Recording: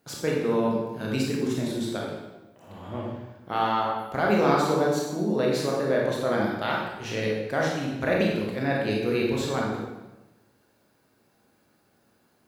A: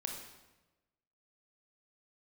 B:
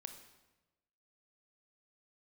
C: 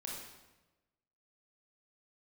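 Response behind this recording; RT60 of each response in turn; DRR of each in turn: C; 1.1, 1.1, 1.1 seconds; 1.5, 6.5, −3.0 decibels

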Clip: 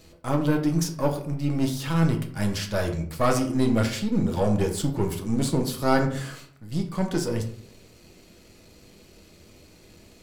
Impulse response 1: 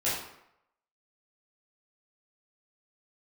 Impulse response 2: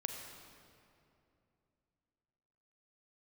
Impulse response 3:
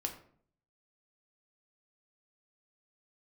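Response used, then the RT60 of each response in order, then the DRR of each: 3; 0.80, 2.7, 0.55 seconds; −10.0, 3.0, 3.0 decibels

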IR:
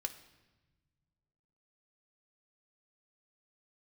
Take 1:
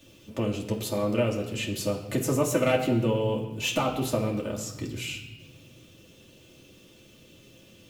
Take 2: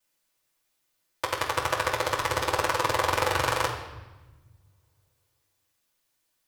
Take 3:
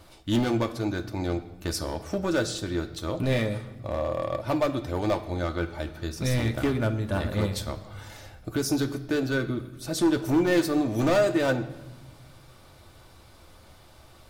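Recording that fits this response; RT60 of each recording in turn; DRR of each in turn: 3; 1.1, 1.1, 1.1 seconds; −2.5, −12.0, 5.0 decibels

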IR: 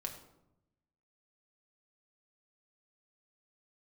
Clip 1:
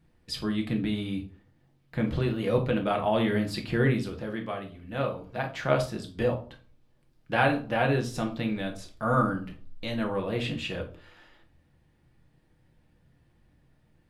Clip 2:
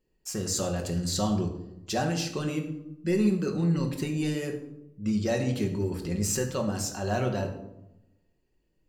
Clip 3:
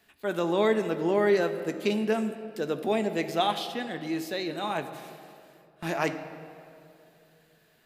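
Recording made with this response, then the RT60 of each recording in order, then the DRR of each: 2; 0.40, 0.85, 2.7 seconds; 2.0, 2.0, 7.0 decibels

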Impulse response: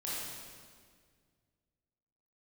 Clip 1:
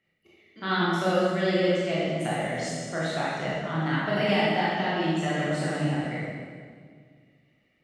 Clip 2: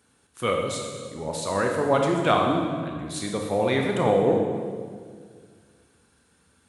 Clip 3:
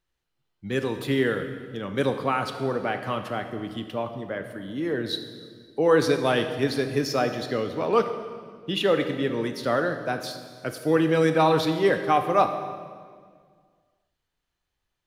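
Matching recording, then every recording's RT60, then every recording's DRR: 1; 1.9, 1.9, 1.9 seconds; −8.0, 1.0, 7.5 decibels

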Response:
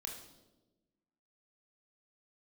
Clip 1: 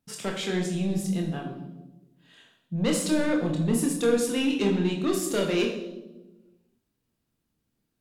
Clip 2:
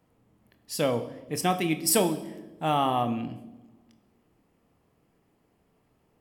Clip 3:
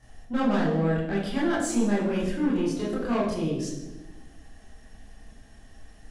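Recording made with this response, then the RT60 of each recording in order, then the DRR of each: 1; 1.1, 1.1, 1.1 seconds; 0.5, 9.0, −7.5 decibels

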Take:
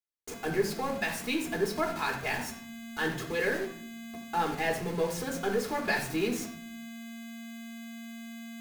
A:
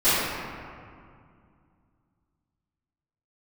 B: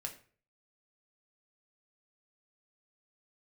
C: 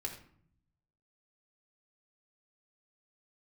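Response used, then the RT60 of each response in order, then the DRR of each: C; 2.2, 0.45, 0.60 seconds; −19.0, 2.0, −0.5 decibels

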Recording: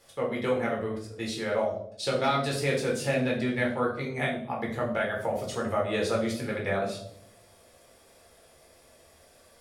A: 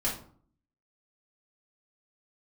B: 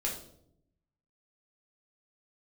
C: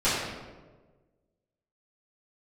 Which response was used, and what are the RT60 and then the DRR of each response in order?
B; 0.50, 0.70, 1.4 seconds; −7.5, −3.0, −14.5 decibels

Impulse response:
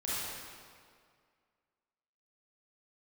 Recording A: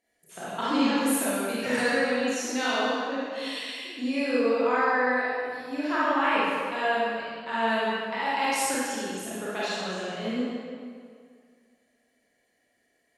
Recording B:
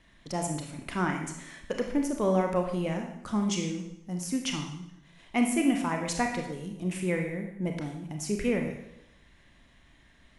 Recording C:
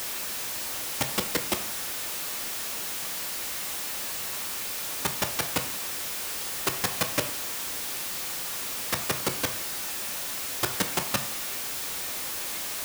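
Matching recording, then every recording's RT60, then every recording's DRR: A; 2.1, 0.80, 0.55 seconds; −9.5, 2.5, 5.5 decibels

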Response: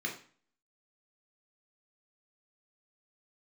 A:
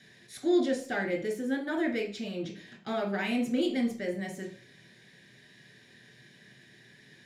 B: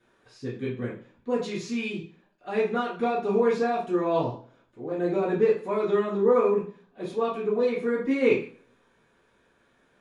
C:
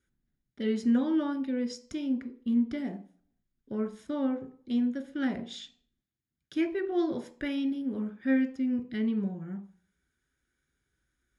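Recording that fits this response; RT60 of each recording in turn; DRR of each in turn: A; 0.45, 0.45, 0.45 seconds; −0.5, −9.0, 8.0 decibels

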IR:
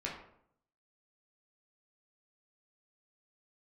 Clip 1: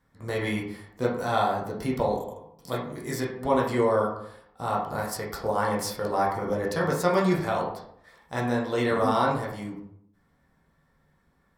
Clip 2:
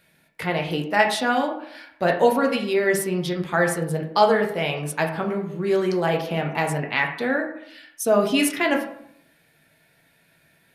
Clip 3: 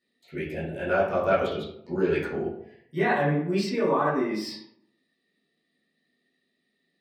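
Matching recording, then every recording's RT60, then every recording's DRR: 1; 0.70, 0.70, 0.70 seconds; −4.0, 1.0, −12.5 decibels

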